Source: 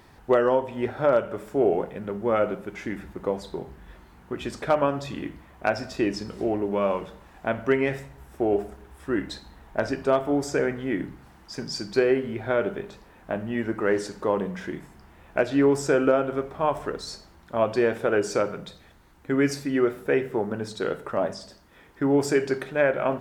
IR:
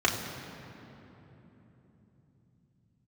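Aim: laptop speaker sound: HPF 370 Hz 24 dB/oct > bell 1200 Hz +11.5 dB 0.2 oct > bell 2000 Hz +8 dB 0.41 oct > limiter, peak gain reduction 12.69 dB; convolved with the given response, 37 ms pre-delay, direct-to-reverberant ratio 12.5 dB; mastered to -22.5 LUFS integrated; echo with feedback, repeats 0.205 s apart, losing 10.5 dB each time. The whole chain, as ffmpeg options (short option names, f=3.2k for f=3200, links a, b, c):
-filter_complex "[0:a]aecho=1:1:205|410|615:0.299|0.0896|0.0269,asplit=2[a][b];[1:a]atrim=start_sample=2205,adelay=37[c];[b][c]afir=irnorm=-1:irlink=0,volume=-26dB[d];[a][d]amix=inputs=2:normalize=0,highpass=f=370:w=0.5412,highpass=f=370:w=1.3066,equalizer=f=1.2k:t=o:w=0.2:g=11.5,equalizer=f=2k:t=o:w=0.41:g=8,volume=7.5dB,alimiter=limit=-11dB:level=0:latency=1"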